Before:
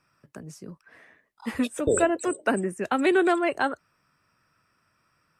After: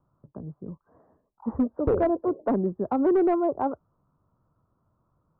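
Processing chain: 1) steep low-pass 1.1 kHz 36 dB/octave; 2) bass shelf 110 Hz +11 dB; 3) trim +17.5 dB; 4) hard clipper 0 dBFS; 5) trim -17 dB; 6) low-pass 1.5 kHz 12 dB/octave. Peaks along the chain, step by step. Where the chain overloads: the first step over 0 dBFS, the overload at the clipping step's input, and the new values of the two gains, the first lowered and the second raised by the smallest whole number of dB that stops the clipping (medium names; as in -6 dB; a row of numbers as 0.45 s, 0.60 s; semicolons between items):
-10.0 dBFS, -9.5 dBFS, +8.0 dBFS, 0.0 dBFS, -17.0 dBFS, -16.5 dBFS; step 3, 8.0 dB; step 3 +9.5 dB, step 5 -9 dB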